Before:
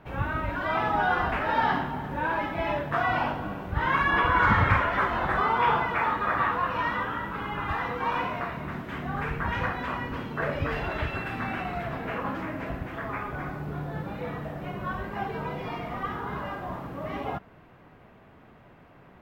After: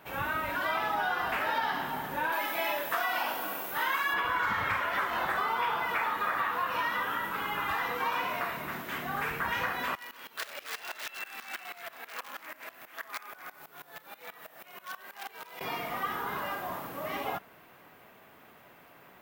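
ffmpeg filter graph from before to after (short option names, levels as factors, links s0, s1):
-filter_complex "[0:a]asettb=1/sr,asplit=3[s0][s1][s2];[s0]atrim=end=2.324[s3];[s1]atrim=start=2.32:end=4.14,asetpts=PTS-STARTPTS,afade=t=in:d=0.004:c=qsin,afade=t=out:st=1.816:d=0.004:c=qsin,highpass=270,aemphasis=mode=production:type=cd[s4];[s2]atrim=start=4.136[s5];[s3][s4]acrossfade=d=0.004:c1=hsin:c2=qsin[s6];[s6][s5]acrossfade=d=0.004:c1=qsin:c2=hsin,asettb=1/sr,asplit=3[s7][s8][s9];[s7]atrim=end=9.954[s10];[s8]atrim=start=9.95:end=15.61,asetpts=PTS-STARTPTS,afade=t=in:d=0.004:c=qsin,afade=t=out:st=5.656:d=0.004:c=qsin,aeval=exprs='0.0531*(abs(mod(val(0)/0.0531+3,4)-2)-1)':c=same,highpass=f=1100:p=1,aeval=exprs='val(0)*pow(10,-19*if(lt(mod(-6.2*n/s,1),2*abs(-6.2)/1000),1-mod(-6.2*n/s,1)/(2*abs(-6.2)/1000),(mod(-6.2*n/s,1)-2*abs(-6.2)/1000)/(1-2*abs(-6.2)/1000))/20)':c=same[s11];[s9]atrim=start=15.606[s12];[s10][s11]acrossfade=d=0.004:c1=hsin:c2=qsin[s13];[s13][s12]acrossfade=d=0.004:c1=qsin:c2=hsin,aemphasis=mode=production:type=riaa,acompressor=threshold=0.0447:ratio=6"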